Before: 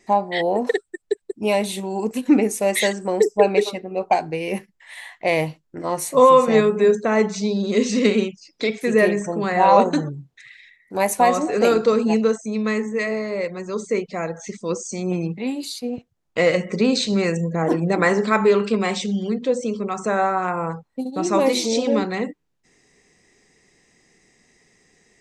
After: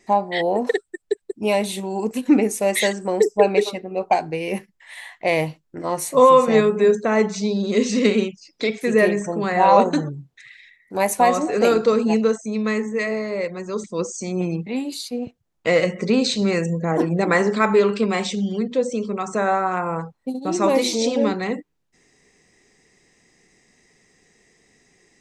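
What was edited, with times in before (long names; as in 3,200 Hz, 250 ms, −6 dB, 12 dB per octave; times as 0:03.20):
0:13.84–0:14.55: remove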